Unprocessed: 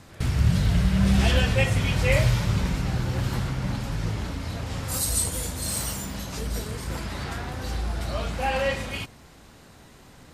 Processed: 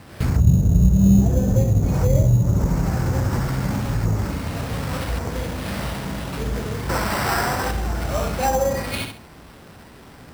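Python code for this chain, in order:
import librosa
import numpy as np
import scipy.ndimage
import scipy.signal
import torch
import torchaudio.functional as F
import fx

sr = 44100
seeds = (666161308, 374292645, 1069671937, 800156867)

y = scipy.signal.medfilt(x, 9)
y = fx.highpass(y, sr, hz=46.0, slope=6)
y = fx.high_shelf(y, sr, hz=6200.0, db=11.5)
y = fx.echo_feedback(y, sr, ms=67, feedback_pct=26, wet_db=-6)
y = fx.env_lowpass_down(y, sr, base_hz=400.0, full_db=-18.0)
y = fx.peak_eq(y, sr, hz=1100.0, db=9.0, octaves=2.8, at=(6.89, 7.71))
y = fx.sample_hold(y, sr, seeds[0], rate_hz=6700.0, jitter_pct=0)
y = y * 10.0 ** (6.0 / 20.0)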